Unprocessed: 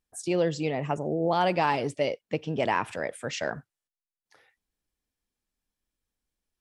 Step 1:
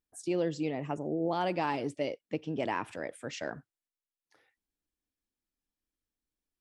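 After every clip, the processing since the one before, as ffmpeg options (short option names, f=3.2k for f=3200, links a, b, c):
-af "equalizer=f=300:w=2.3:g=7,volume=-7.5dB"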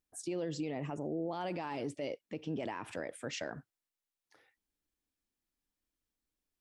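-af "alimiter=level_in=5.5dB:limit=-24dB:level=0:latency=1:release=58,volume=-5.5dB,volume=1dB"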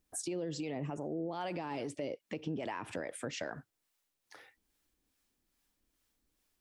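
-filter_complex "[0:a]acrossover=split=550[a][b];[a]aeval=exprs='val(0)*(1-0.5/2+0.5/2*cos(2*PI*2.4*n/s))':c=same[c];[b]aeval=exprs='val(0)*(1-0.5/2-0.5/2*cos(2*PI*2.4*n/s))':c=same[d];[c][d]amix=inputs=2:normalize=0,acompressor=threshold=-52dB:ratio=2.5,volume=12dB"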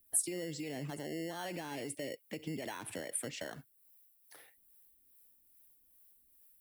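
-filter_complex "[0:a]acrossover=split=190|1200[a][b][c];[b]acrusher=samples=18:mix=1:aa=0.000001[d];[c]aexciter=amount=10.4:drive=3.5:freq=9k[e];[a][d][e]amix=inputs=3:normalize=0,volume=-2.5dB"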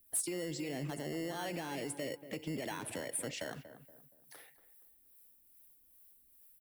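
-filter_complex "[0:a]asoftclip=type=tanh:threshold=-31dB,asplit=2[a][b];[b]adelay=236,lowpass=f=1.3k:p=1,volume=-11.5dB,asplit=2[c][d];[d]adelay=236,lowpass=f=1.3k:p=1,volume=0.41,asplit=2[e][f];[f]adelay=236,lowpass=f=1.3k:p=1,volume=0.41,asplit=2[g][h];[h]adelay=236,lowpass=f=1.3k:p=1,volume=0.41[i];[a][c][e][g][i]amix=inputs=5:normalize=0,volume=2dB"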